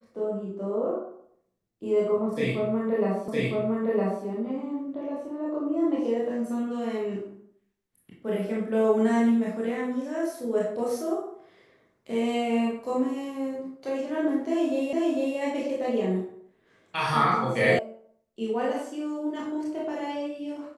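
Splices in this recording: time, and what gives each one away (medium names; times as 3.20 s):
3.28 s: repeat of the last 0.96 s
14.93 s: repeat of the last 0.45 s
17.79 s: sound stops dead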